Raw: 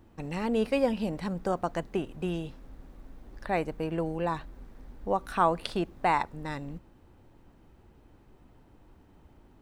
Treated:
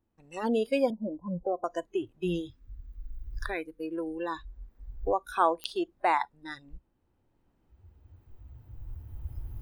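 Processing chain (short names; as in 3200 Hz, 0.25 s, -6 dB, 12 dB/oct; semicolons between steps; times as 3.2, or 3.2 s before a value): recorder AGC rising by 6.6 dB/s; spectral noise reduction 22 dB; 0.9–1.64 Chebyshev low-pass 980 Hz, order 5; 2.48–4.47 bell 680 Hz -13 dB 0.86 oct; pops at 5.64, -20 dBFS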